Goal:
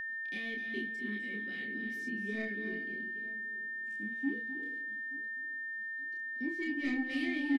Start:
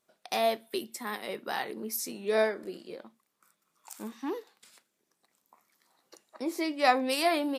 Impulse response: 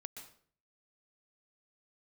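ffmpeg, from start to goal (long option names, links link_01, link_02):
-filter_complex "[0:a]flanger=delay=4.1:depth=1.6:regen=43:speed=1.6:shape=triangular,acrossover=split=4400[link_01][link_02];[link_02]acompressor=mode=upward:threshold=-57dB:ratio=2.5[link_03];[link_01][link_03]amix=inputs=2:normalize=0,asplit=3[link_04][link_05][link_06];[link_04]bandpass=frequency=270:width_type=q:width=8,volume=0dB[link_07];[link_05]bandpass=frequency=2290:width_type=q:width=8,volume=-6dB[link_08];[link_06]bandpass=frequency=3010:width_type=q:width=8,volume=-9dB[link_09];[link_07][link_08][link_09]amix=inputs=3:normalize=0,lowshelf=frequency=81:gain=8.5,asoftclip=type=tanh:threshold=-38dB,asplit=2[link_10][link_11];[1:a]atrim=start_sample=2205,asetrate=23373,aresample=44100,adelay=29[link_12];[link_11][link_12]afir=irnorm=-1:irlink=0,volume=0dB[link_13];[link_10][link_13]amix=inputs=2:normalize=0,aeval=exprs='val(0)+0.00891*sin(2*PI*1800*n/s)':channel_layout=same,lowshelf=frequency=260:gain=12,asplit=2[link_14][link_15];[link_15]adelay=878,lowpass=frequency=2500:poles=1,volume=-19dB,asplit=2[link_16][link_17];[link_17]adelay=878,lowpass=frequency=2500:poles=1,volume=0.31,asplit=2[link_18][link_19];[link_19]adelay=878,lowpass=frequency=2500:poles=1,volume=0.31[link_20];[link_14][link_16][link_18][link_20]amix=inputs=4:normalize=0,volume=4dB"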